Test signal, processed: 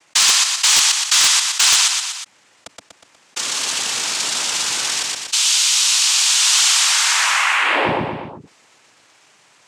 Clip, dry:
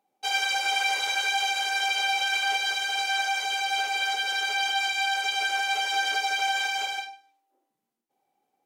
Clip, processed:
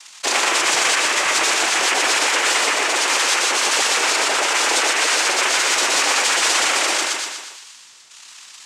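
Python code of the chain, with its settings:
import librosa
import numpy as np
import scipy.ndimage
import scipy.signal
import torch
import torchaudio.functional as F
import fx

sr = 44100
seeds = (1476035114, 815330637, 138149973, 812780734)

p1 = fx.peak_eq(x, sr, hz=530.0, db=4.5, octaves=0.83)
p2 = fx.rider(p1, sr, range_db=4, speed_s=2.0)
p3 = p1 + (p2 * 10.0 ** (-1.0 / 20.0))
p4 = fx.freq_invert(p3, sr, carrier_hz=3900)
p5 = fx.noise_vocoder(p4, sr, seeds[0], bands=4)
p6 = fx.low_shelf(p5, sr, hz=240.0, db=-8.5)
p7 = p6 + fx.echo_feedback(p6, sr, ms=121, feedback_pct=31, wet_db=-3.0, dry=0)
p8 = 10.0 ** (-5.5 / 20.0) * (np.abs((p7 / 10.0 ** (-5.5 / 20.0) + 3.0) % 4.0 - 2.0) - 1.0)
y = fx.env_flatten(p8, sr, amount_pct=50)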